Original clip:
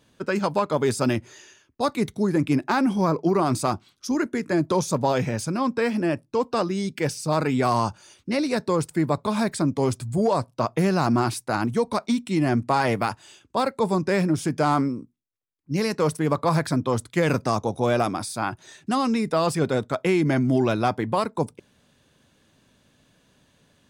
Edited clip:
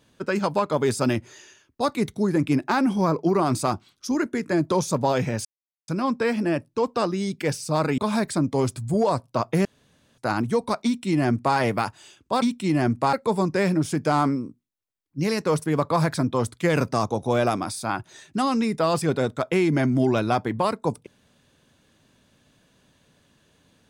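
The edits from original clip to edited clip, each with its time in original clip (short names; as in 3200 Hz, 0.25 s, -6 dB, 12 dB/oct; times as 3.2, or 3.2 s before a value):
5.45 insert silence 0.43 s
7.55–9.22 cut
10.89–11.42 room tone
12.09–12.8 copy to 13.66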